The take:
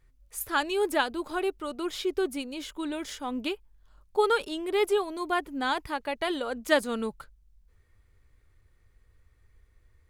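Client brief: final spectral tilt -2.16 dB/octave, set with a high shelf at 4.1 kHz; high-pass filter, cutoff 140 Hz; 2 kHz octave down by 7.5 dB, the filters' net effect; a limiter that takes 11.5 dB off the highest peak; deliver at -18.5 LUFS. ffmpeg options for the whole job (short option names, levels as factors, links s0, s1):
-af "highpass=140,equalizer=f=2000:t=o:g=-9,highshelf=f=4100:g=-7,volume=5.96,alimiter=limit=0.398:level=0:latency=1"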